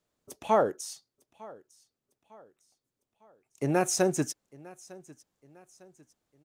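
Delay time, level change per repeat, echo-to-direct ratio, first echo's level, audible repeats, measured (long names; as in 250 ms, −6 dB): 903 ms, −7.5 dB, −21.0 dB, −22.0 dB, 2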